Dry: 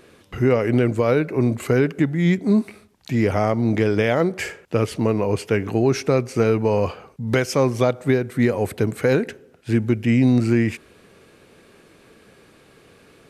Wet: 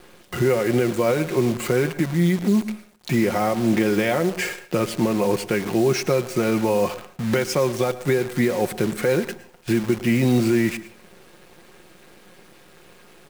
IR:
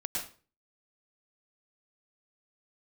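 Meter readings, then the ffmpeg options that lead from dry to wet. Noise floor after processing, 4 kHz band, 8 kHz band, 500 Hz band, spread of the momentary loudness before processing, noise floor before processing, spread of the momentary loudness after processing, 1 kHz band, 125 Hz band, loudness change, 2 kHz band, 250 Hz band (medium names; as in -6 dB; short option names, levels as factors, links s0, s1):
-50 dBFS, +3.0 dB, +5.0 dB, -1.0 dB, 6 LU, -52 dBFS, 6 LU, 0.0 dB, -3.5 dB, -1.5 dB, 0.0 dB, -1.0 dB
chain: -filter_complex "[0:a]highpass=f=130:p=1,aecho=1:1:5.6:0.56,alimiter=limit=0.178:level=0:latency=1:release=401,acrusher=bits=7:dc=4:mix=0:aa=0.000001,asplit=2[s0][s1];[1:a]atrim=start_sample=2205[s2];[s1][s2]afir=irnorm=-1:irlink=0,volume=0.158[s3];[s0][s3]amix=inputs=2:normalize=0,volume=1.5"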